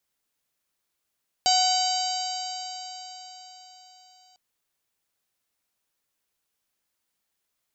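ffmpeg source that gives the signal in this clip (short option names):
-f lavfi -i "aevalsrc='0.0944*pow(10,-3*t/4.47)*sin(2*PI*738.29*t)+0.0119*pow(10,-3*t/4.47)*sin(2*PI*1484.28*t)+0.0126*pow(10,-3*t/4.47)*sin(2*PI*2245.55*t)+0.0376*pow(10,-3*t/4.47)*sin(2*PI*3029.42*t)+0.0316*pow(10,-3*t/4.47)*sin(2*PI*3842.84*t)+0.0841*pow(10,-3*t/4.47)*sin(2*PI*4692.32*t)+0.0251*pow(10,-3*t/4.47)*sin(2*PI*5583.89*t)+0.0376*pow(10,-3*t/4.47)*sin(2*PI*6523.01*t)+0.0355*pow(10,-3*t/4.47)*sin(2*PI*7514.64*t)':d=2.9:s=44100"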